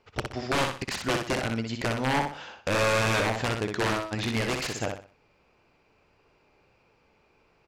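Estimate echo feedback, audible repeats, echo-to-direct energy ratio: 32%, 4, −4.5 dB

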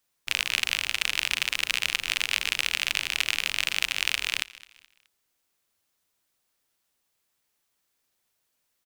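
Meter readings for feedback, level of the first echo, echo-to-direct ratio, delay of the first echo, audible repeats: 36%, −20.0 dB, −19.5 dB, 212 ms, 2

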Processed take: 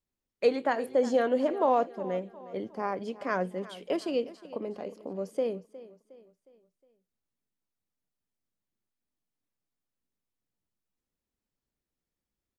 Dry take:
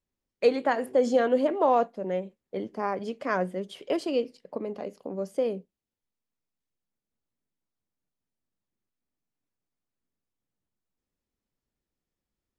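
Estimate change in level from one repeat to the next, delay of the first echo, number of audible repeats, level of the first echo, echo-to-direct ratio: −7.0 dB, 361 ms, 3, −17.5 dB, −16.5 dB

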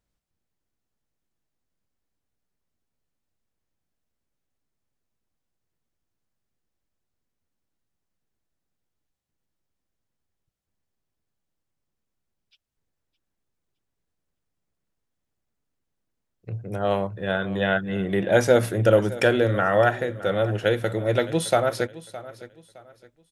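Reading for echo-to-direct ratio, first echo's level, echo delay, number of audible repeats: −16.5 dB, −17.0 dB, 614 ms, 2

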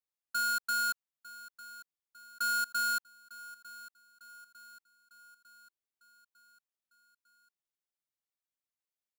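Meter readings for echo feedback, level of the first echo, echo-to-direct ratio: 55%, −18.0 dB, −16.5 dB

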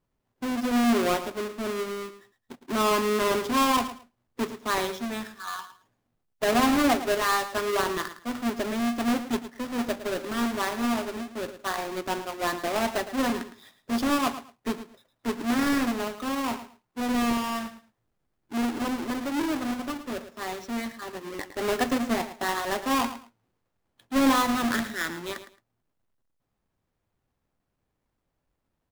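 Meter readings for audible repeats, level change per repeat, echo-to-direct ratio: 2, −14.0 dB, −12.5 dB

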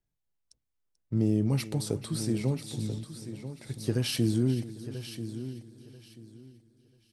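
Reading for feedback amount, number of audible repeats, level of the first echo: repeats not evenly spaced, 7, −16.5 dB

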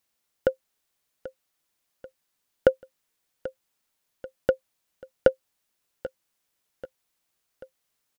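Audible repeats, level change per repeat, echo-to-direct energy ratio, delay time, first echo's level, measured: 3, −6.0 dB, −15.0 dB, 787 ms, −16.0 dB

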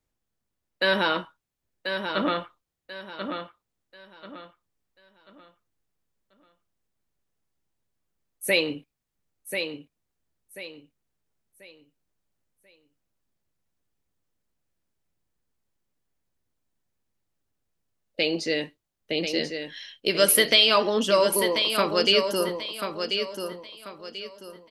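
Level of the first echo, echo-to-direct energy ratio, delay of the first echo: −7.0 dB, −6.5 dB, 1,038 ms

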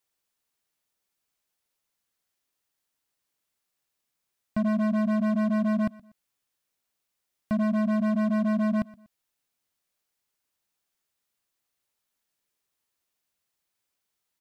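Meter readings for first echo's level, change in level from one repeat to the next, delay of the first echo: −21.0 dB, −9.5 dB, 121 ms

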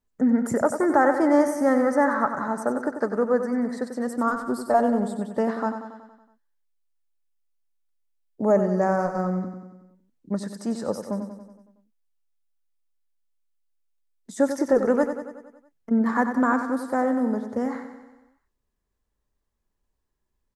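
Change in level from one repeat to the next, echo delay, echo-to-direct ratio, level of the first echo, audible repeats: −4.5 dB, 93 ms, −7.0 dB, −9.0 dB, 6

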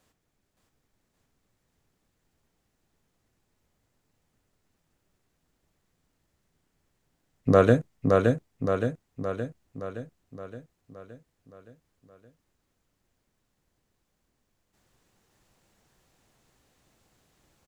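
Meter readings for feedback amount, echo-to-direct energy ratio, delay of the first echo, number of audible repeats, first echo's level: 56%, −1.5 dB, 569 ms, 7, −3.0 dB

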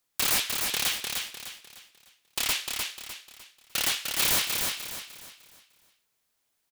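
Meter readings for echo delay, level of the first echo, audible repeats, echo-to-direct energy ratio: 302 ms, −4.5 dB, 4, −4.0 dB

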